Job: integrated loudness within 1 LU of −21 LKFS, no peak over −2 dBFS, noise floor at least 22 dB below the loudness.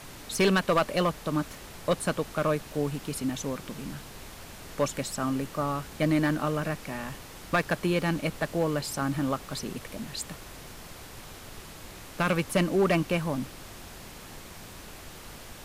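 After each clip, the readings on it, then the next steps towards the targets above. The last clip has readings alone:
share of clipped samples 0.3%; peaks flattened at −17.0 dBFS; background noise floor −45 dBFS; target noise floor −51 dBFS; integrated loudness −29.0 LKFS; sample peak −17.0 dBFS; target loudness −21.0 LKFS
→ clipped peaks rebuilt −17 dBFS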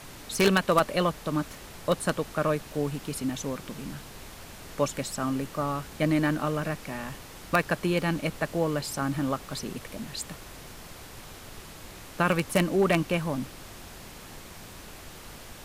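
share of clipped samples 0.0%; background noise floor −45 dBFS; target noise floor −51 dBFS
→ noise reduction from a noise print 6 dB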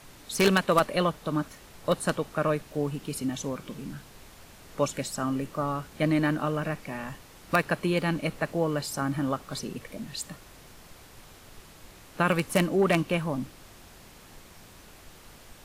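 background noise floor −51 dBFS; integrated loudness −28.5 LKFS; sample peak −8.0 dBFS; target loudness −21.0 LKFS
→ level +7.5 dB
brickwall limiter −2 dBFS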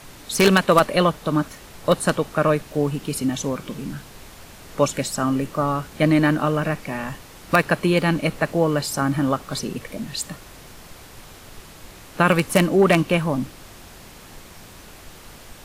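integrated loudness −21.0 LKFS; sample peak −2.0 dBFS; background noise floor −44 dBFS

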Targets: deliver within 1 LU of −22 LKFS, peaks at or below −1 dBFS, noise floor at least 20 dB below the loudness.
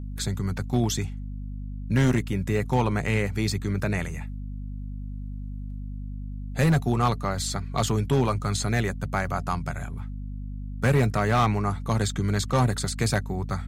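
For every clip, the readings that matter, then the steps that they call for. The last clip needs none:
share of clipped samples 0.9%; peaks flattened at −15.0 dBFS; mains hum 50 Hz; hum harmonics up to 250 Hz; level of the hum −31 dBFS; integrated loudness −26.0 LKFS; sample peak −15.0 dBFS; target loudness −22.0 LKFS
→ clipped peaks rebuilt −15 dBFS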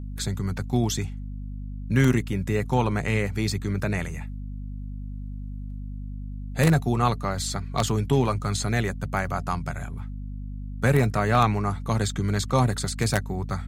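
share of clipped samples 0.0%; mains hum 50 Hz; hum harmonics up to 250 Hz; level of the hum −31 dBFS
→ mains-hum notches 50/100/150/200/250 Hz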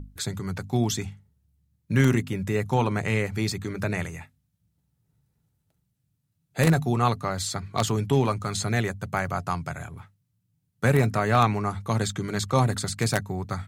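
mains hum none found; integrated loudness −26.0 LKFS; sample peak −6.0 dBFS; target loudness −22.0 LKFS
→ level +4 dB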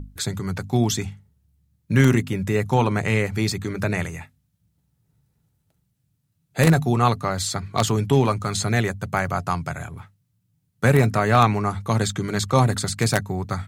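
integrated loudness −22.0 LKFS; sample peak −2.0 dBFS; background noise floor −71 dBFS

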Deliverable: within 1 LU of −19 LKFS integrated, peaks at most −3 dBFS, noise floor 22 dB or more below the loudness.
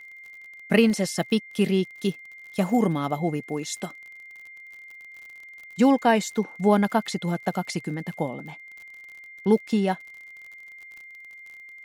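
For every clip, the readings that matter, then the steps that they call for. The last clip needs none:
crackle rate 45 per second; interfering tone 2,100 Hz; level of the tone −42 dBFS; integrated loudness −24.5 LKFS; sample peak −4.5 dBFS; target loudness −19.0 LKFS
→ click removal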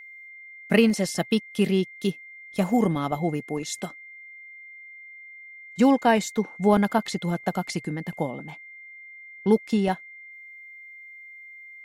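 crackle rate 0.17 per second; interfering tone 2,100 Hz; level of the tone −42 dBFS
→ notch filter 2,100 Hz, Q 30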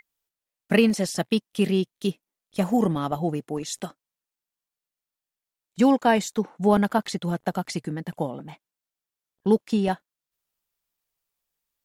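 interfering tone none found; integrated loudness −25.0 LKFS; sample peak −5.0 dBFS; target loudness −19.0 LKFS
→ level +6 dB
brickwall limiter −3 dBFS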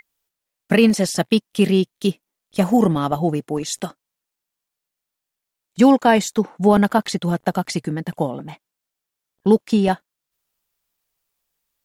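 integrated loudness −19.0 LKFS; sample peak −3.0 dBFS; background noise floor −83 dBFS

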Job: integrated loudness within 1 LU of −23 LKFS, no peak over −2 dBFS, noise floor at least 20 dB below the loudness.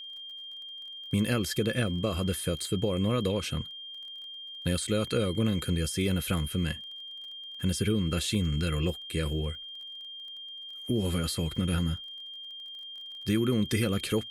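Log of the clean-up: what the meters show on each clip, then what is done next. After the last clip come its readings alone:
crackle rate 28 per second; interfering tone 3,200 Hz; level of the tone −40 dBFS; integrated loudness −31.0 LKFS; sample peak −15.5 dBFS; target loudness −23.0 LKFS
→ click removal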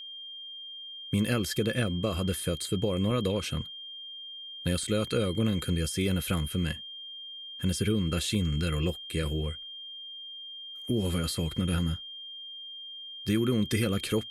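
crackle rate 0 per second; interfering tone 3,200 Hz; level of the tone −40 dBFS
→ notch filter 3,200 Hz, Q 30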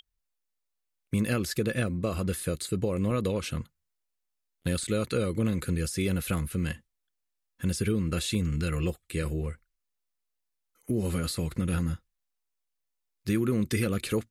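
interfering tone none found; integrated loudness −30.0 LKFS; sample peak −16.0 dBFS; target loudness −23.0 LKFS
→ level +7 dB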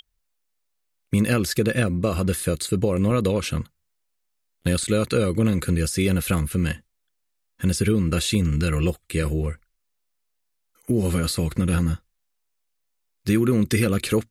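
integrated loudness −23.0 LKFS; sample peak −9.0 dBFS; background noise floor −75 dBFS

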